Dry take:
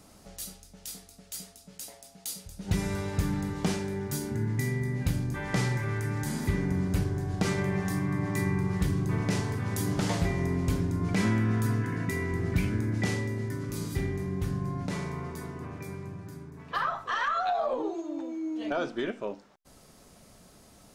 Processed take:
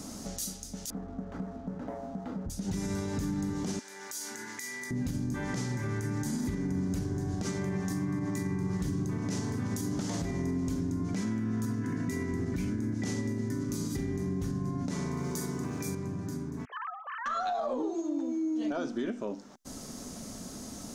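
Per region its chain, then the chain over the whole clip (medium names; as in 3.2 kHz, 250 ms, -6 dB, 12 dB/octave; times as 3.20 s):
0.90–2.50 s: low-pass 1.4 kHz 24 dB/octave + waveshaping leveller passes 2
3.79–4.91 s: high-pass 1.2 kHz + compression 3:1, threshold -44 dBFS
15.17–15.95 s: treble shelf 3.5 kHz +9.5 dB + companded quantiser 8-bit + doubling 43 ms -7 dB
16.65–17.26 s: formants replaced by sine waves + brick-wall FIR high-pass 400 Hz + compression 2:1, threshold -56 dBFS
whole clip: fifteen-band graphic EQ 250 Hz +11 dB, 2.5 kHz -4 dB, 6.3 kHz +9 dB; compression 2.5:1, threshold -44 dBFS; peak limiter -32.5 dBFS; trim +8.5 dB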